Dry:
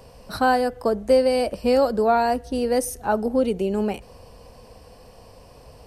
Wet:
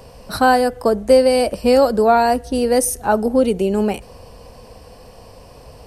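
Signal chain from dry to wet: dynamic EQ 9700 Hz, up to +5 dB, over -52 dBFS, Q 0.92; gain +5.5 dB

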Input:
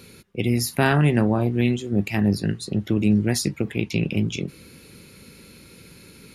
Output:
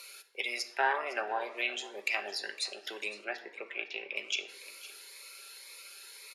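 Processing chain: Bessel high-pass 920 Hz, order 6; treble ducked by the level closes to 1300 Hz, closed at -24.5 dBFS; 3.24–4.16 LPF 2200 Hz 12 dB/oct; echo 0.509 s -17.5 dB; shoebox room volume 3200 m³, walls furnished, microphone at 1.2 m; cascading phaser rising 1.9 Hz; gain +2 dB

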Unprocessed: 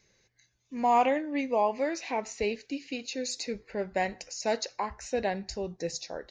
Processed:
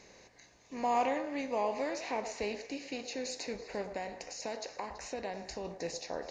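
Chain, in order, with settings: per-bin compression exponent 0.6; 3.81–5.65 compressor 2.5:1, threshold -29 dBFS, peak gain reduction 7 dB; delay with a stepping band-pass 0.11 s, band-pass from 600 Hz, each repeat 1.4 oct, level -8 dB; gain -8.5 dB

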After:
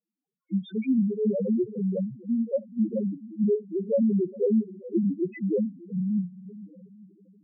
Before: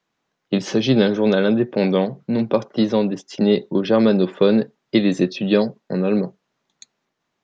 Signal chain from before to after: nonlinear frequency compression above 1200 Hz 1.5:1; diffused feedback echo 0.488 s, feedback 41%, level -15.5 dB; loudest bins only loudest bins 1

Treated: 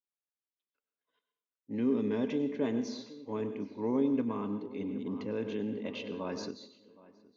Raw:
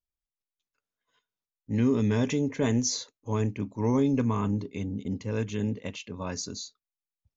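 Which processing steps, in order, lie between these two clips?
Chebyshev band-pass 280–4000 Hz, order 2; bell 1800 Hz -5 dB 2.3 oct; short-mantissa float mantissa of 6-bit; air absorption 170 m; tape echo 0.768 s, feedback 32%, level -16 dB, low-pass 2200 Hz; on a send at -10 dB: reverb RT60 0.65 s, pre-delay 91 ms; 4.8–6.51 on the sum: fast leveller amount 50%; gain -2.5 dB

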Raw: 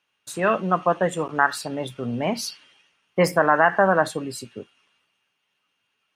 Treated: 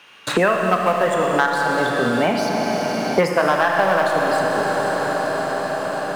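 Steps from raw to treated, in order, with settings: LPF 1900 Hz 6 dB/oct; sample leveller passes 1; tilt +2 dB/oct; Schroeder reverb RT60 3.5 s, combs from 27 ms, DRR 0.5 dB; three-band squash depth 100%

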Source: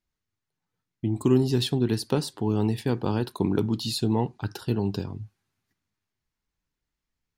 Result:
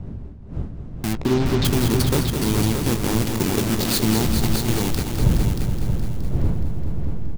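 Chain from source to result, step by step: level-crossing sampler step -23 dBFS; wind noise 110 Hz -28 dBFS; high shelf 4500 Hz +11.5 dB; notches 50/100 Hz; in parallel at -6.5 dB: wavefolder -18 dBFS; 1.13–1.65 on the sum: air absorption 160 m; doubler 18 ms -13 dB; on a send: multi-head echo 0.21 s, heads all three, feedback 44%, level -9 dB

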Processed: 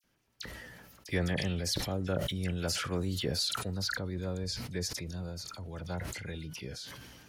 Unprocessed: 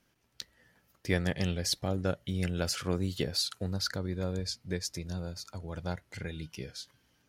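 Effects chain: dispersion lows, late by 40 ms, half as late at 2500 Hz; sustainer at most 30 dB/s; gain -2.5 dB

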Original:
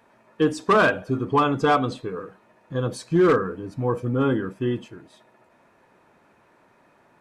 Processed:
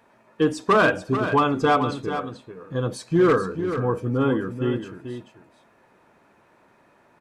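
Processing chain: echo 0.437 s -9.5 dB

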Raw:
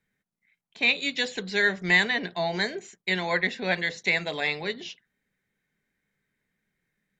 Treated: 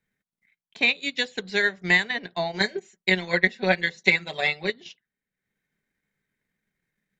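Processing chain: 2.6–4.7 comb 5.3 ms, depth 88%; transient shaper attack +6 dB, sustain -8 dB; gain -2 dB

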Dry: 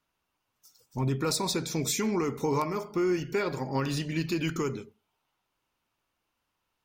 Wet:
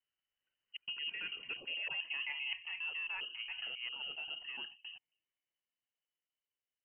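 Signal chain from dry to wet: slices in reverse order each 0.123 s, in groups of 2; Doppler pass-by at 1.97, 38 m/s, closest 12 m; low shelf 130 Hz +10 dB; reverse; compressor 6:1, threshold -38 dBFS, peak gain reduction 14 dB; reverse; inverted band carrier 3000 Hz

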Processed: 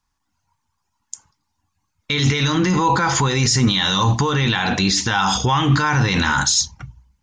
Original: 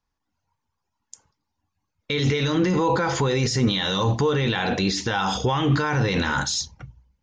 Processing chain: graphic EQ 500/1000/8000 Hz -10/+4/+7 dB; maximiser +11.5 dB; gain -6 dB

